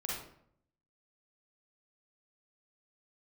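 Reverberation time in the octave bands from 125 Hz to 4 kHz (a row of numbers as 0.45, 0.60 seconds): 0.90, 0.80, 0.70, 0.65, 0.55, 0.45 seconds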